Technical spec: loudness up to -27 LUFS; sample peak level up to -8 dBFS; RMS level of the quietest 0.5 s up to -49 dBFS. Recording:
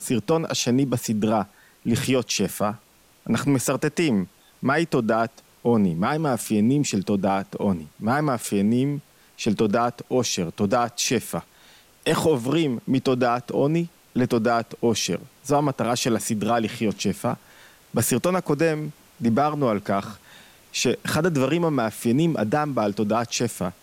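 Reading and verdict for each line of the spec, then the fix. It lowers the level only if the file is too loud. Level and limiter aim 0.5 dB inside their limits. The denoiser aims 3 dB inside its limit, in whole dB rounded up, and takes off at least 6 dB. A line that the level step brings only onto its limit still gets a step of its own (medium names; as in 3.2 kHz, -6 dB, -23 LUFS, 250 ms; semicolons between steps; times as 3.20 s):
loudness -23.5 LUFS: fail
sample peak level -10.0 dBFS: pass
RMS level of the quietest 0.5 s -55 dBFS: pass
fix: trim -4 dB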